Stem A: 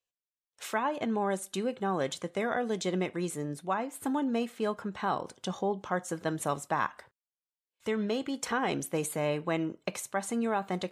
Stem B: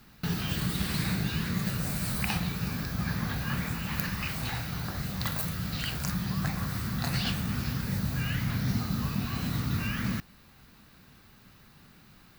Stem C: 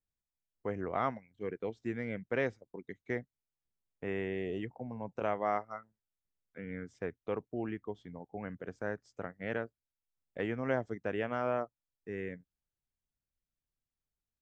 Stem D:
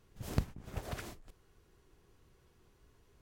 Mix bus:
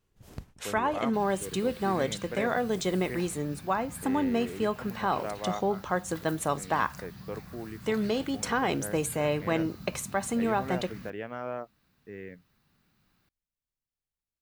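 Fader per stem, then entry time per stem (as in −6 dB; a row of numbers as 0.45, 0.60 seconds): +2.5, −14.5, −3.0, −9.0 decibels; 0.00, 0.90, 0.00, 0.00 seconds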